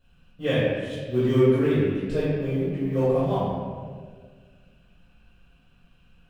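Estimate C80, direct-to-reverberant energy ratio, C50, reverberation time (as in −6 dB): −0.5 dB, −15.5 dB, −3.5 dB, 1.7 s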